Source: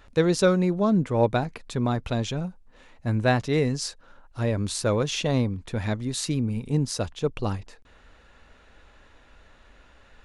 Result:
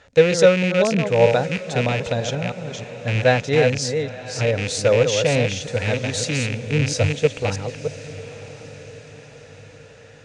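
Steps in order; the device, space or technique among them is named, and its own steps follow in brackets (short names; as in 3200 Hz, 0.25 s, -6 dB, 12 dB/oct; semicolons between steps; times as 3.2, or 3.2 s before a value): reverse delay 0.315 s, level -6 dB; 6.79–7.28 bell 100 Hz +14 dB 0.37 oct; car door speaker with a rattle (rattling part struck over -26 dBFS, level -19 dBFS; speaker cabinet 93–8200 Hz, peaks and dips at 220 Hz -8 dB, 350 Hz -10 dB, 500 Hz +9 dB, 1100 Hz -8 dB, 1800 Hz +3 dB, 6400 Hz +4 dB); diffused feedback echo 0.987 s, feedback 49%, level -15.5 dB; gain +4 dB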